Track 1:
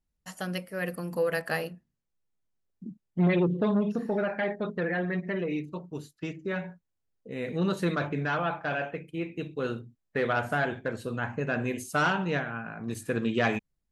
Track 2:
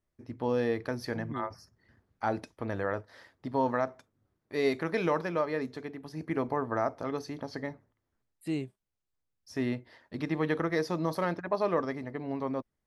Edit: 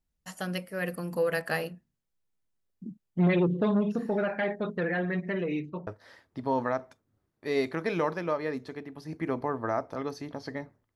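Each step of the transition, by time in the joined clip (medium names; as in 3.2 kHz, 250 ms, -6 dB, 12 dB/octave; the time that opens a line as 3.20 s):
track 1
5.42–5.87 s: low-pass 11 kHz -> 1.4 kHz
5.87 s: go over to track 2 from 2.95 s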